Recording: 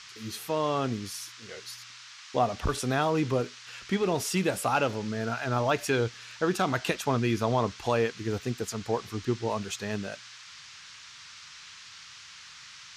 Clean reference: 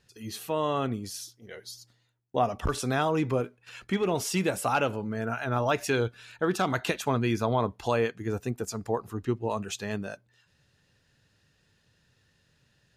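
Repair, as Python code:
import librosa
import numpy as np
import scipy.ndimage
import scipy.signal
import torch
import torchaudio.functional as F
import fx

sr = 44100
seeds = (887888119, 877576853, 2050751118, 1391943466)

y = fx.noise_reduce(x, sr, print_start_s=10.69, print_end_s=11.19, reduce_db=20.0)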